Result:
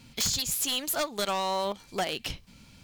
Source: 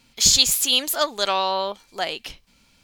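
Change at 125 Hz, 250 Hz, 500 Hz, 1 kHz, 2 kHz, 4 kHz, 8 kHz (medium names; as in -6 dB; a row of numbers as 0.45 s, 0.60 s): no reading, -2.5 dB, -5.5 dB, -6.5 dB, -6.5 dB, -11.0 dB, -10.5 dB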